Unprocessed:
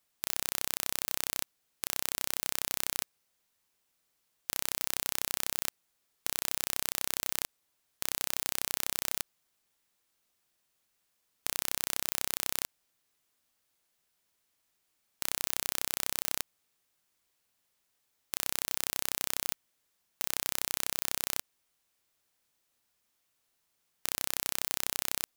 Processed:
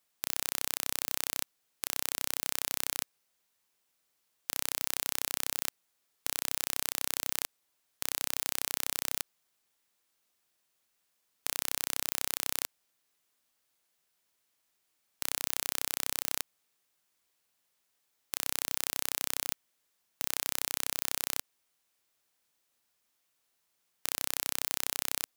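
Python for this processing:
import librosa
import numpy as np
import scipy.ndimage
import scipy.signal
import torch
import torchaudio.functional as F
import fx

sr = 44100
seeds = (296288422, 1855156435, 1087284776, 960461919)

y = fx.low_shelf(x, sr, hz=160.0, db=-6.5)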